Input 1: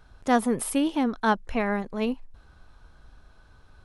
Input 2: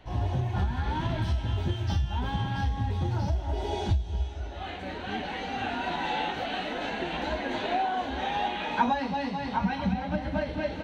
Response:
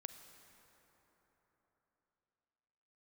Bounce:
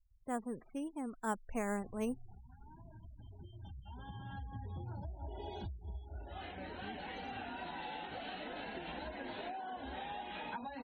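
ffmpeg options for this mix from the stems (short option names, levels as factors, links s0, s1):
-filter_complex "[0:a]aemphasis=mode=reproduction:type=75fm,acrusher=samples=5:mix=1:aa=0.000001,volume=0.282,afade=t=in:st=1.06:d=0.66:silence=0.446684,asplit=3[s0][s1][s2];[s1]volume=0.0891[s3];[1:a]acompressor=threshold=0.0251:ratio=8,adelay=1750,volume=0.335,asplit=2[s4][s5];[s5]volume=0.224[s6];[s2]apad=whole_len=554887[s7];[s4][s7]sidechaincompress=threshold=0.00112:ratio=4:attack=16:release=1400[s8];[2:a]atrim=start_sample=2205[s9];[s3][s6]amix=inputs=2:normalize=0[s10];[s10][s9]afir=irnorm=-1:irlink=0[s11];[s0][s8][s11]amix=inputs=3:normalize=0,afftfilt=real='re*gte(hypot(re,im),0.00251)':imag='im*gte(hypot(re,im),0.00251)':win_size=1024:overlap=0.75"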